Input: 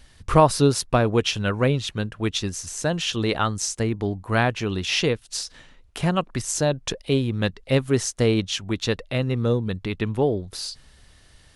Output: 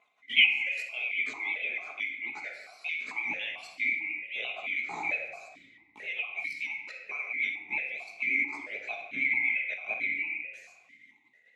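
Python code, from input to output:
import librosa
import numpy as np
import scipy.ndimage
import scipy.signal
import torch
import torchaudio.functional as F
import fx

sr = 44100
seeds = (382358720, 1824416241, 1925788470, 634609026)

y = fx.band_swap(x, sr, width_hz=2000)
y = fx.level_steps(y, sr, step_db=13)
y = fx.chorus_voices(y, sr, voices=2, hz=0.26, base_ms=17, depth_ms=1.1, mix_pct=55)
y = fx.vibrato(y, sr, rate_hz=8.8, depth_cents=80.0)
y = fx.room_shoebox(y, sr, seeds[0], volume_m3=1000.0, walls='mixed', distance_m=1.4)
y = fx.vowel_held(y, sr, hz=4.5)
y = F.gain(torch.from_numpy(y), 6.5).numpy()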